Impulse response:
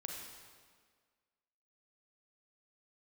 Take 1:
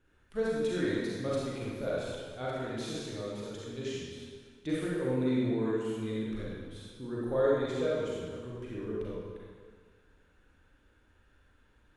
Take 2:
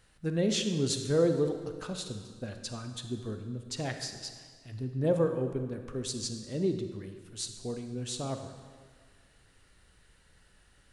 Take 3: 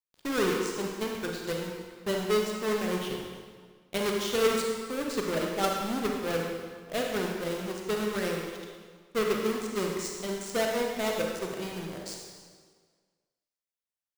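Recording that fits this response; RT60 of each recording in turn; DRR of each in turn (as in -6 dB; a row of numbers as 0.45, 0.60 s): 3; 1.7, 1.7, 1.7 s; -6.5, 6.5, 0.0 dB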